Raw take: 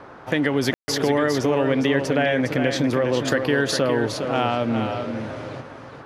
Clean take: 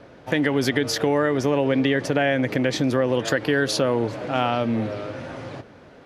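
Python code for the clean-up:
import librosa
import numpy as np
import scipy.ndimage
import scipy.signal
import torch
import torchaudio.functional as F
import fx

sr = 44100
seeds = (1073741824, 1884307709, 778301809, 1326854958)

y = fx.fix_ambience(x, sr, seeds[0], print_start_s=5.54, print_end_s=6.04, start_s=0.74, end_s=0.88)
y = fx.noise_reduce(y, sr, print_start_s=5.54, print_end_s=6.04, reduce_db=6.0)
y = fx.fix_echo_inverse(y, sr, delay_ms=408, level_db=-7.0)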